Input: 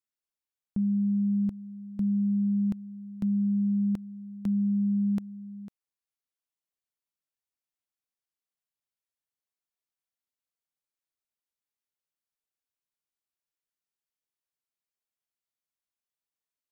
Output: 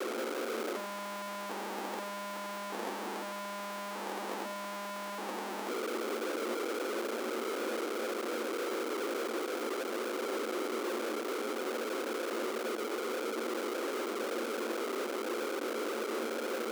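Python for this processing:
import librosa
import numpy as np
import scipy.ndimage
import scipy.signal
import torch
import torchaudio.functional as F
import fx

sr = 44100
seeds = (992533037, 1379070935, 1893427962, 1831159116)

y = fx.dmg_noise_band(x, sr, seeds[0], low_hz=350.0, high_hz=540.0, level_db=-44.0)
y = fx.schmitt(y, sr, flips_db=-47.0)
y = scipy.signal.sosfilt(scipy.signal.cheby1(6, 6, 220.0, 'highpass', fs=sr, output='sos'), y)
y = y + 10.0 ** (-12.0 / 20.0) * np.pad(y, (int(90 * sr / 1000.0), 0))[:len(y)]
y = y * 10.0 ** (2.5 / 20.0)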